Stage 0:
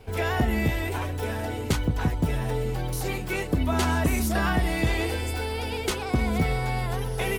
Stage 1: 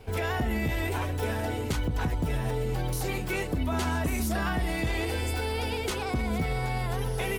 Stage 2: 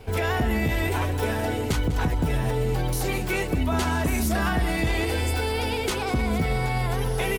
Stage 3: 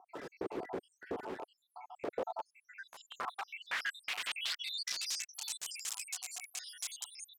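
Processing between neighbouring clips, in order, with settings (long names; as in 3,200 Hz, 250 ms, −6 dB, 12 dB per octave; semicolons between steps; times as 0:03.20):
brickwall limiter −20.5 dBFS, peak gain reduction 6.5 dB
single-tap delay 198 ms −14.5 dB; level +4.5 dB
time-frequency cells dropped at random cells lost 85%; wrap-around overflow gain 30.5 dB; band-pass filter sweep 380 Hz → 7,200 Hz, 0:01.79–0:05.43; level +7.5 dB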